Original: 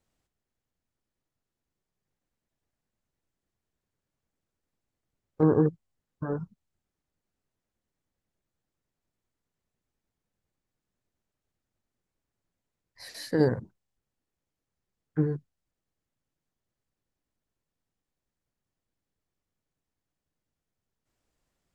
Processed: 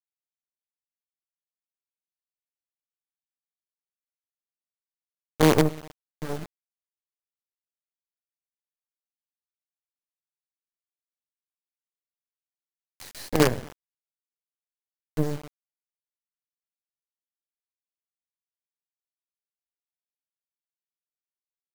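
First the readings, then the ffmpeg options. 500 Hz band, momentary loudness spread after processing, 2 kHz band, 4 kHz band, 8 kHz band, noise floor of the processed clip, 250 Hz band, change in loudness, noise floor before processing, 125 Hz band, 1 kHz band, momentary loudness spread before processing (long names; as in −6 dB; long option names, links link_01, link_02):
+2.5 dB, 21 LU, +10.0 dB, +11.5 dB, +15.5 dB, below −85 dBFS, +1.5 dB, +3.5 dB, below −85 dBFS, +1.0 dB, +9.0 dB, 17 LU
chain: -filter_complex "[0:a]asplit=2[link_01][link_02];[link_02]adelay=122,lowpass=frequency=2600:poles=1,volume=-18dB,asplit=2[link_03][link_04];[link_04]adelay=122,lowpass=frequency=2600:poles=1,volume=0.41,asplit=2[link_05][link_06];[link_06]adelay=122,lowpass=frequency=2600:poles=1,volume=0.41[link_07];[link_01][link_03][link_05][link_07]amix=inputs=4:normalize=0,acrusher=bits=4:dc=4:mix=0:aa=0.000001,acompressor=mode=upward:threshold=-41dB:ratio=2.5,volume=3dB"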